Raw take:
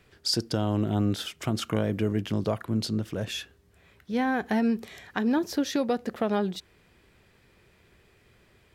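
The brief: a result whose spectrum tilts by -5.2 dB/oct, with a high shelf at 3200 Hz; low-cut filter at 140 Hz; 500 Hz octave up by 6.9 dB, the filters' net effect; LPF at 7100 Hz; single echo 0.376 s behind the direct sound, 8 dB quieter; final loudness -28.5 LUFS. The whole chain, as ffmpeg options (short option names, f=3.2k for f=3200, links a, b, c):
-af "highpass=140,lowpass=7.1k,equalizer=f=500:t=o:g=8.5,highshelf=f=3.2k:g=-4.5,aecho=1:1:376:0.398,volume=-3dB"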